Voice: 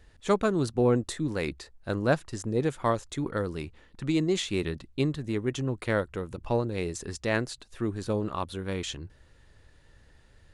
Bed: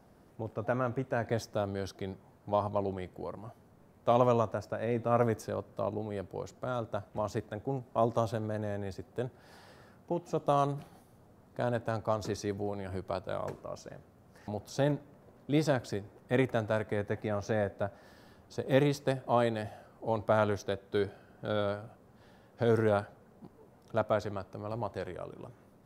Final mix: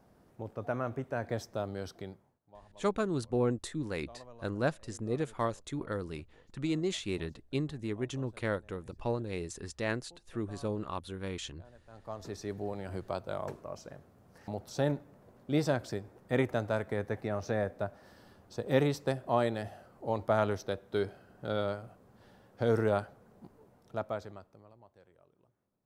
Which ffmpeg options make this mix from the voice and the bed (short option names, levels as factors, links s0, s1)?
-filter_complex "[0:a]adelay=2550,volume=0.501[s0];[1:a]volume=12.6,afade=t=out:st=1.97:d=0.43:silence=0.0707946,afade=t=in:st=11.87:d=0.87:silence=0.0562341,afade=t=out:st=23.41:d=1.34:silence=0.0749894[s1];[s0][s1]amix=inputs=2:normalize=0"